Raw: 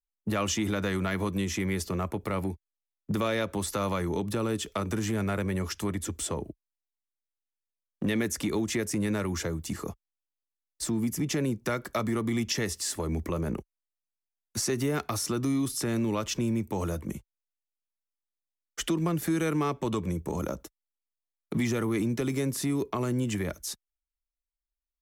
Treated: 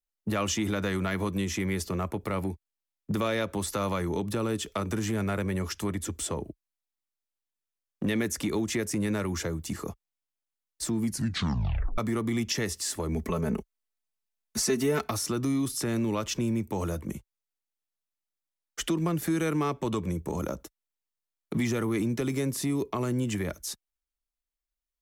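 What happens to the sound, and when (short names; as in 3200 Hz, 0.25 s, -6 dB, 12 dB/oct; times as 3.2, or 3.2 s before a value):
11.03 tape stop 0.95 s
13.15–15.11 comb 4.6 ms, depth 80%
22.55–22.95 bell 1500 Hz -9 dB 0.22 oct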